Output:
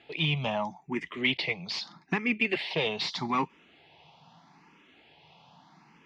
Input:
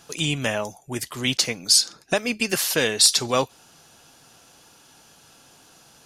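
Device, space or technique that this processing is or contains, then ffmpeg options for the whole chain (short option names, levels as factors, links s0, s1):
barber-pole phaser into a guitar amplifier: -filter_complex "[0:a]asplit=2[s0][s1];[s1]afreqshift=0.8[s2];[s0][s2]amix=inputs=2:normalize=1,asoftclip=type=tanh:threshold=0.119,highpass=91,equalizer=f=110:t=q:w=4:g=-6,equalizer=f=170:t=q:w=4:g=8,equalizer=f=520:t=q:w=4:g=-6,equalizer=f=920:t=q:w=4:g=6,equalizer=f=1500:t=q:w=4:g=-10,equalizer=f=2100:t=q:w=4:g=8,lowpass=f=3500:w=0.5412,lowpass=f=3500:w=1.3066"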